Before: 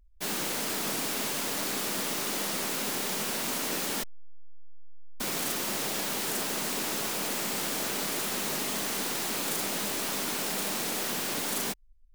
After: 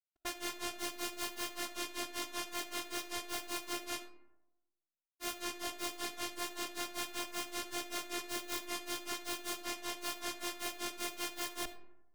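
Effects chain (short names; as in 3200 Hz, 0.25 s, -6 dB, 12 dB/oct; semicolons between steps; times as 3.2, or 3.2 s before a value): Schmitt trigger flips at -36.5 dBFS; robotiser 349 Hz; grains 0.17 s, grains 5.2/s, pitch spread up and down by 0 st; digital reverb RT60 0.97 s, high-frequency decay 0.4×, pre-delay 10 ms, DRR 11 dB; gain -2 dB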